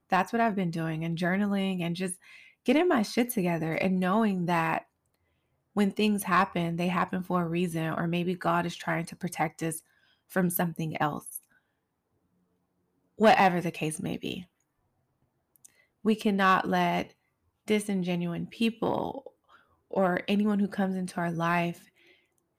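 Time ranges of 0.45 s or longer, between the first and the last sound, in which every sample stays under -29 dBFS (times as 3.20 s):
2.13–2.68 s
4.79–5.77 s
9.77–10.36 s
11.36–13.20 s
14.37–16.05 s
17.02–17.68 s
19.18–19.93 s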